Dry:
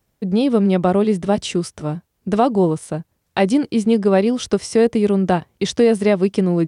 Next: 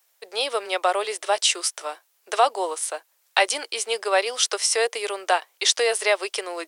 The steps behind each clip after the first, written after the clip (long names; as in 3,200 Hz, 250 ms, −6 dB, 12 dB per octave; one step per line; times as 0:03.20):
Bessel high-pass filter 800 Hz, order 8
spectral tilt +2 dB per octave
level +3.5 dB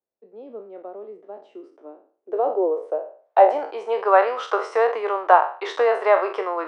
peak hold with a decay on every bin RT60 0.42 s
low-pass filter sweep 210 Hz → 1,100 Hz, 0:01.41–0:04.19
level +2 dB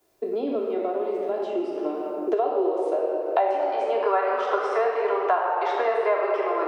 rectangular room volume 3,900 cubic metres, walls mixed, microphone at 3.1 metres
multiband upward and downward compressor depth 100%
level −7.5 dB